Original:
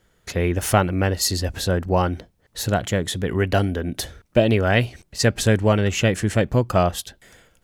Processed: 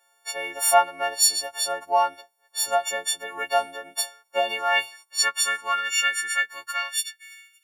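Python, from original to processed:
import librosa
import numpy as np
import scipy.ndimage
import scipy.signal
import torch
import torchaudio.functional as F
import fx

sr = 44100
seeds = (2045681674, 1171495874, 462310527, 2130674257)

y = fx.freq_snap(x, sr, grid_st=4)
y = fx.filter_sweep_highpass(y, sr, from_hz=770.0, to_hz=2400.0, start_s=4.26, end_s=7.6, q=4.4)
y = y * 10.0 ** (-8.5 / 20.0)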